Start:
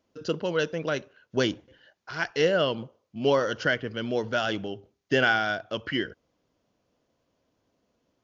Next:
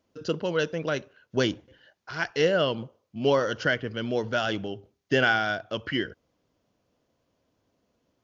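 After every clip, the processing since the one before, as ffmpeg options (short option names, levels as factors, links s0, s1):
-af "equalizer=f=93:w=0.89:g=2.5"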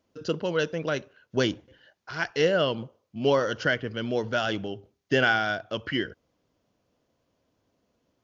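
-af anull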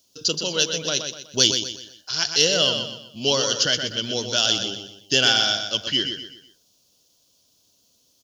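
-filter_complex "[0:a]aexciter=amount=10.8:drive=7:freq=3100,asplit=2[s0][s1];[s1]aecho=0:1:124|248|372|496:0.447|0.17|0.0645|0.0245[s2];[s0][s2]amix=inputs=2:normalize=0,volume=0.794"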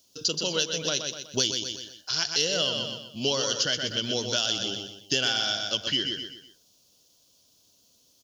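-af "acompressor=threshold=0.0631:ratio=3"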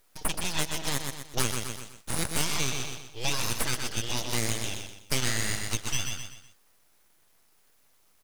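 -af "aeval=exprs='abs(val(0))':c=same"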